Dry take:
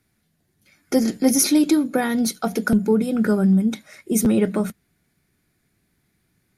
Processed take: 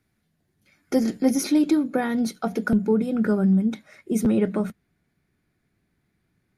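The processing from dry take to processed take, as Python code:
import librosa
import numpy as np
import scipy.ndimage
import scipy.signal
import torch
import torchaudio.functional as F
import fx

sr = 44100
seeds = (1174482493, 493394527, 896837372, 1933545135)

y = fx.high_shelf(x, sr, hz=4400.0, db=fx.steps((0.0, -7.0), (1.2, -12.0)))
y = y * 10.0 ** (-2.5 / 20.0)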